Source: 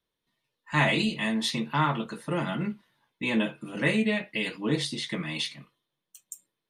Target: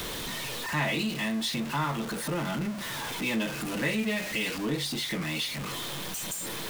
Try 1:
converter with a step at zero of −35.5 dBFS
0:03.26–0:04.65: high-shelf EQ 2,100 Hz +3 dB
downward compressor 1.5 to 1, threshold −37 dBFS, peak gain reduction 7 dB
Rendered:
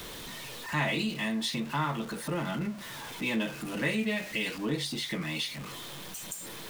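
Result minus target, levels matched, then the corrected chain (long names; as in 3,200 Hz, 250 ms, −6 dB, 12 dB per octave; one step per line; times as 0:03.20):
converter with a step at zero: distortion −6 dB
converter with a step at zero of −27.5 dBFS
0:03.26–0:04.65: high-shelf EQ 2,100 Hz +3 dB
downward compressor 1.5 to 1, threshold −37 dBFS, peak gain reduction 7 dB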